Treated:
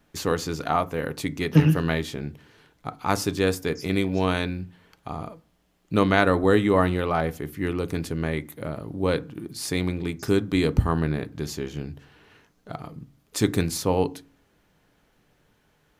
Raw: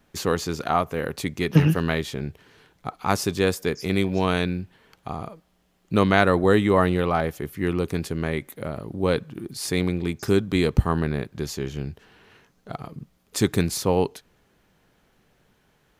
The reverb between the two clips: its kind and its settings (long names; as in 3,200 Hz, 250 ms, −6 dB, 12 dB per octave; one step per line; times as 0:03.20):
feedback delay network reverb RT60 0.33 s, low-frequency decay 1.55×, high-frequency decay 0.5×, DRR 12.5 dB
level −1.5 dB